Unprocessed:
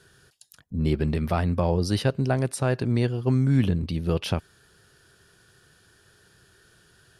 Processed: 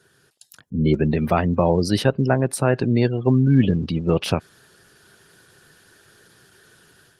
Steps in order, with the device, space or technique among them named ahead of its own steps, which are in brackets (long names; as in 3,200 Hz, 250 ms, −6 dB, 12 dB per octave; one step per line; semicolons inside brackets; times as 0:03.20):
noise-suppressed video call (high-pass filter 130 Hz 12 dB per octave; gate on every frequency bin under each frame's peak −30 dB strong; automatic gain control gain up to 7.5 dB; Opus 20 kbit/s 48,000 Hz)